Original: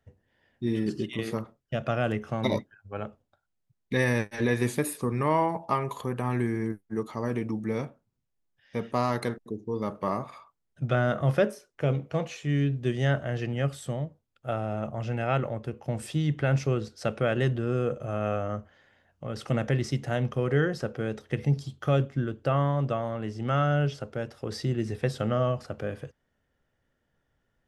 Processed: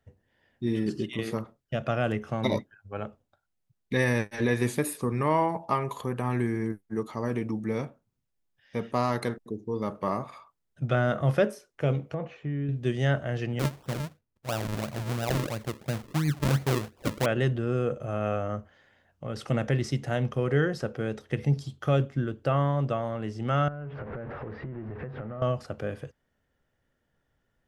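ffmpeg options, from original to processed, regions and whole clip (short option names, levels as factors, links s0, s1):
-filter_complex "[0:a]asettb=1/sr,asplit=3[s0][s1][s2];[s0]atrim=end=12.144[s3];[s1]atrim=start=12.14:end=12.69,asetpts=PTS-STARTPTS,afade=t=in:d=0.004:c=qsin,afade=t=out:st=0.546:d=0.004:c=qsin,lowpass=1600,acompressor=threshold=0.0447:ratio=5:attack=3.2:release=140:knee=1:detection=peak[s4];[s2]atrim=start=12.686[s5];[s3][s4]acrossfade=d=0.004:c1=hsin:c2=qsin[s6];[s6][s5]acrossfade=d=0.004:c1=qsin:c2=hsin,asettb=1/sr,asplit=3[s7][s8][s9];[s7]atrim=end=13.594[s10];[s8]atrim=start=13.59:end=17.26,asetpts=PTS-STARTPTS,afade=t=in:d=0.004:c=qsin,afade=t=out:st=3.666:d=0.004:c=qsin,lowpass=f=1300:p=1,acrusher=samples=40:mix=1:aa=0.000001:lfo=1:lforange=40:lforate=2.9[s11];[s9]atrim=start=17.256[s12];[s10][s11]acrossfade=d=0.004:c1=hsin:c2=qsin[s13];[s13][s12]acrossfade=d=0.004:c1=qsin:c2=hsin,asettb=1/sr,asplit=3[s14][s15][s16];[s14]atrim=end=23.684[s17];[s15]atrim=start=23.68:end=25.42,asetpts=PTS-STARTPTS,afade=t=in:d=0.004:c=qsin,afade=t=out:st=1.736:d=0.004:c=qsin,aeval=exprs='val(0)+0.5*0.0266*sgn(val(0))':c=same,lowpass=f=1900:w=0.5412,lowpass=f=1900:w=1.3066,acompressor=threshold=0.0224:ratio=20:attack=3.2:release=140:knee=1:detection=peak[s18];[s16]atrim=start=25.416[s19];[s17][s18]acrossfade=d=0.004:c1=hsin:c2=qsin[s20];[s20][s19]acrossfade=d=0.004:c1=qsin:c2=hsin"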